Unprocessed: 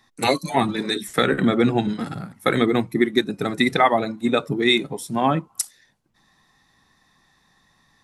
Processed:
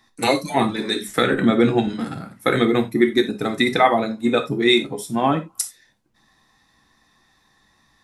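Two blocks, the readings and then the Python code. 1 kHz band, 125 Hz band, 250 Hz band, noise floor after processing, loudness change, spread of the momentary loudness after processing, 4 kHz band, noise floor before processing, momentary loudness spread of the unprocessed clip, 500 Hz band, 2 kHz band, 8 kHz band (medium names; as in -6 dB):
+1.0 dB, -0.5 dB, +1.5 dB, -62 dBFS, +1.5 dB, 9 LU, +1.0 dB, -63 dBFS, 9 LU, +2.0 dB, +1.0 dB, +1.0 dB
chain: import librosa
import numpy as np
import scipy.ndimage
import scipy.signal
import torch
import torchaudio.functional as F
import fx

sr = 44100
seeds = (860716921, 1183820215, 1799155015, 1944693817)

y = fx.rev_gated(x, sr, seeds[0], gate_ms=110, shape='falling', drr_db=5.5)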